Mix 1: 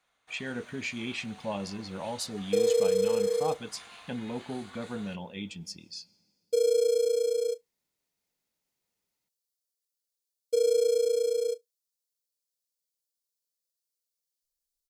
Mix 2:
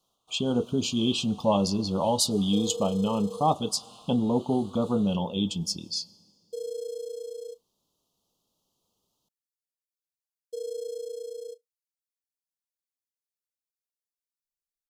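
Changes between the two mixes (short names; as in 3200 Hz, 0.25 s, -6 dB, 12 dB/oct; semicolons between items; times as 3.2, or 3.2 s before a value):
speech +11.5 dB; second sound -10.0 dB; master: add elliptic band-stop 1200–3000 Hz, stop band 60 dB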